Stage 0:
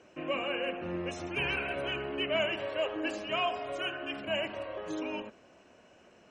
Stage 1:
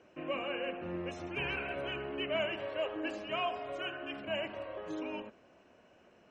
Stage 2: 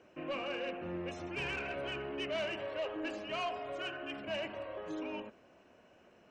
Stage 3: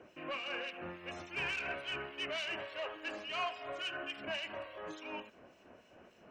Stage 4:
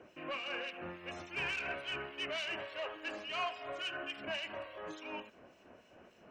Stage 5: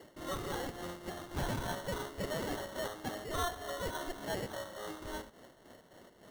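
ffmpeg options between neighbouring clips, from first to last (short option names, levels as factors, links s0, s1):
-af "highshelf=f=5800:g=-11.5,volume=0.708"
-af "asoftclip=type=tanh:threshold=0.0299"
-filter_complex "[0:a]acrossover=split=920[s0][s1];[s0]acompressor=threshold=0.00355:ratio=10[s2];[s2][s1]amix=inputs=2:normalize=0,acrossover=split=2400[s3][s4];[s3]aeval=exprs='val(0)*(1-0.7/2+0.7/2*cos(2*PI*3.5*n/s))':c=same[s5];[s4]aeval=exprs='val(0)*(1-0.7/2-0.7/2*cos(2*PI*3.5*n/s))':c=same[s6];[s5][s6]amix=inputs=2:normalize=0,volume=2"
-af anull
-af "acrusher=samples=18:mix=1:aa=0.000001,volume=1.26"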